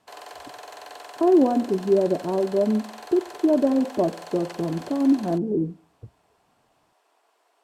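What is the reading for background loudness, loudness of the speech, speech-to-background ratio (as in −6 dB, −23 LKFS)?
−41.0 LKFS, −23.0 LKFS, 18.0 dB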